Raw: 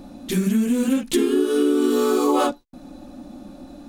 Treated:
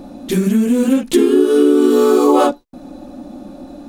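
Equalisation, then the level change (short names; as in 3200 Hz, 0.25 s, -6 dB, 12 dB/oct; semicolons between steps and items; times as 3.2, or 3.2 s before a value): bell 490 Hz +6 dB 2.3 oct; +2.5 dB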